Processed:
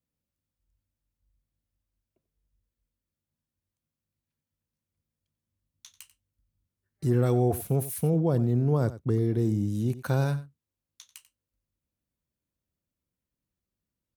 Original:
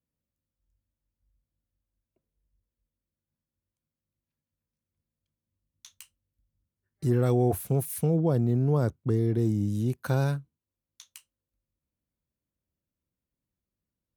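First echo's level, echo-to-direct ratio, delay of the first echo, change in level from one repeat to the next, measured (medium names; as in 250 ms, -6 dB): -15.5 dB, -15.5 dB, 91 ms, no regular repeats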